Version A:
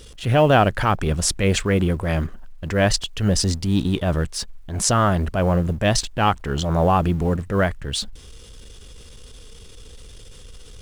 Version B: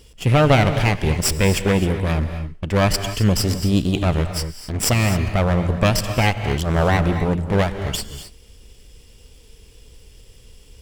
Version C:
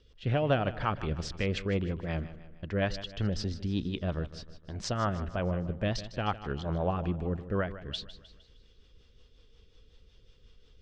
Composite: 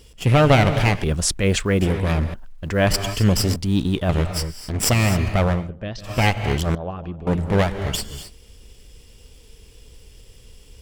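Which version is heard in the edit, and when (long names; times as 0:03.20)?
B
0:01.04–0:01.81: punch in from A
0:02.34–0:02.87: punch in from A
0:03.56–0:04.09: punch in from A
0:05.59–0:06.11: punch in from C, crossfade 0.24 s
0:06.75–0:07.27: punch in from C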